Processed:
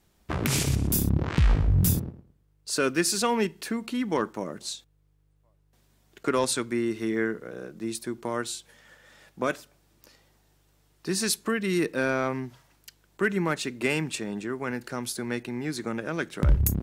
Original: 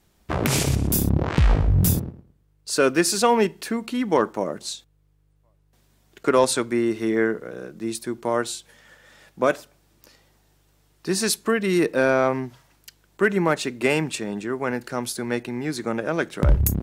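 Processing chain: dynamic EQ 650 Hz, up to -7 dB, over -33 dBFS, Q 0.96; gain -3 dB

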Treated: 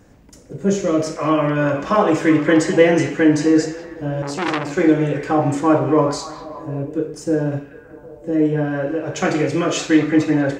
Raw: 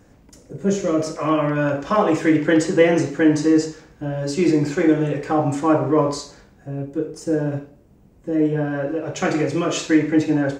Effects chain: on a send: delay with a stepping band-pass 0.19 s, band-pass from 2600 Hz, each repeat -0.7 oct, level -7.5 dB; 4.22–4.77 on the sum: core saturation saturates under 2100 Hz; gain +2 dB

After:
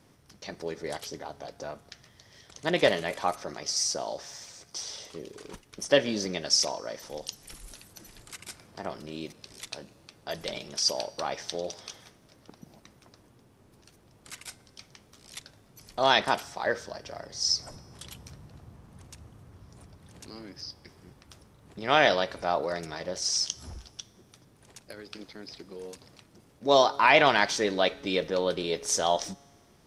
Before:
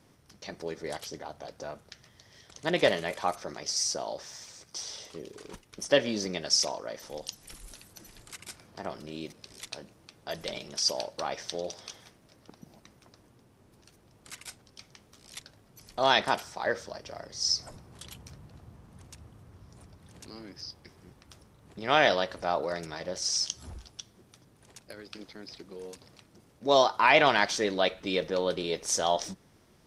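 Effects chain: resonator 140 Hz, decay 1.6 s, mix 40%; gain +5.5 dB

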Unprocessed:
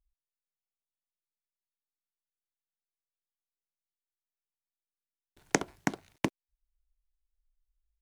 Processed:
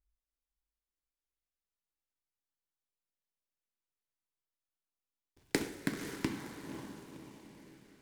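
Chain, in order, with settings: bell 710 Hz -11 dB 0.35 oct; on a send: diffused feedback echo 0.527 s, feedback 46%, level -8 dB; on the sum: LFO notch saw down 0.47 Hz 570–3500 Hz; in parallel at -10 dB: sample-rate reducer 3300 Hz; on the sum: two-slope reverb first 0.51 s, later 4.5 s, from -16 dB, DRR 3.5 dB; noise-modulated delay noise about 2000 Hz, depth 0.041 ms; gain -5.5 dB

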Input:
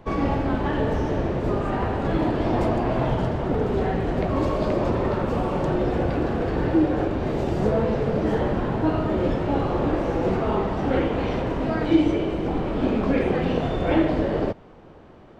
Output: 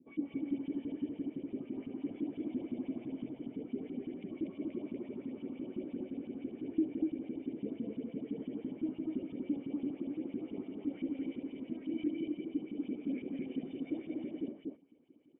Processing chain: HPF 77 Hz; LFO band-pass saw up 5.9 Hz 230–3500 Hz; vocal tract filter i; on a send: echo 0.241 s -3 dB; on the sum: gain -1 dB

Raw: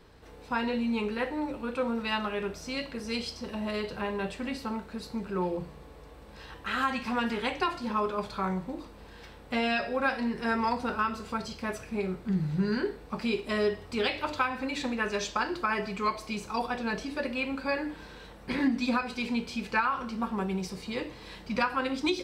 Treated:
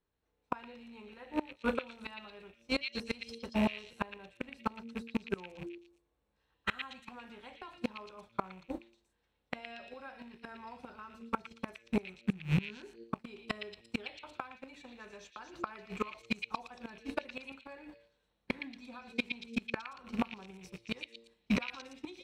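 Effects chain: rattling part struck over -37 dBFS, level -31 dBFS; gate -34 dBFS, range -36 dB; notch 4800 Hz, Q 7.5; de-hum 115.1 Hz, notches 5; dynamic EQ 740 Hz, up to +4 dB, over -43 dBFS, Q 1.6; in parallel at -2.5 dB: level quantiser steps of 19 dB; on the sum: flipped gate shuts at -21 dBFS, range -26 dB; on a send: delay with a stepping band-pass 0.116 s, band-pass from 3000 Hz, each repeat 0.7 oct, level -2 dB; on the sum: gain +2.5 dB

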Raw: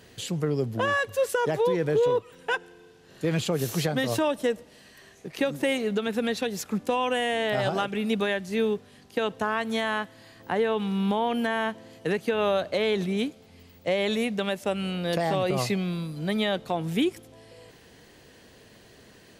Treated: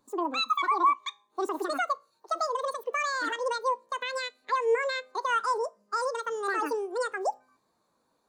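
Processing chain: spring tank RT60 1.1 s, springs 41 ms, chirp 50 ms, DRR 16 dB; speed mistake 33 rpm record played at 78 rpm; spectral expander 1.5:1

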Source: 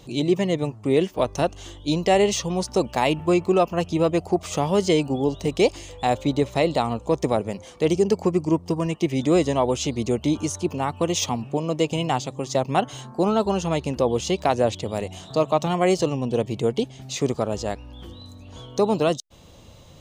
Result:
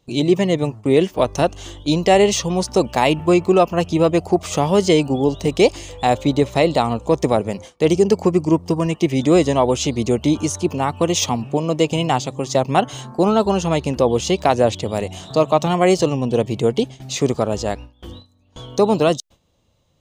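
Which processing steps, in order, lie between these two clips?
gate with hold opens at -31 dBFS; gain +5 dB

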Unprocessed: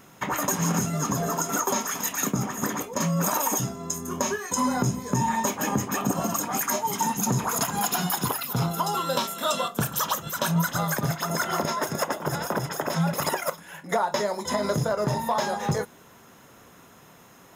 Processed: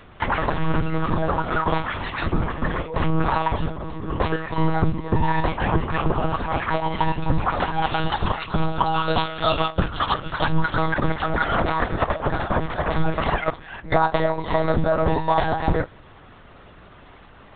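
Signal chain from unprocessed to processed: monotone LPC vocoder at 8 kHz 160 Hz; gain +6 dB

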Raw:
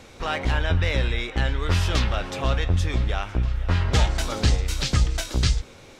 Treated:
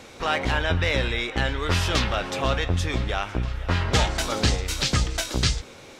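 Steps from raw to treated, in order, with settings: low shelf 100 Hz -10.5 dB; gain +3 dB

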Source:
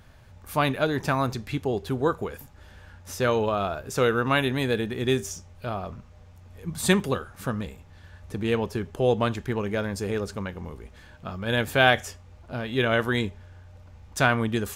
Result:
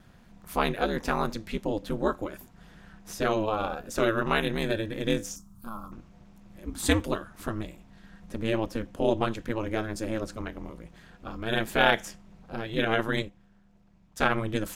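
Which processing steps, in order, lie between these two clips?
5.36–5.92 EQ curve 110 Hz 0 dB, 570 Hz -19 dB, 1200 Hz +2 dB, 1900 Hz -26 dB, 12000 Hz +13 dB; ring modulator 110 Hz; 13.22–14.32 upward expander 1.5:1, over -41 dBFS

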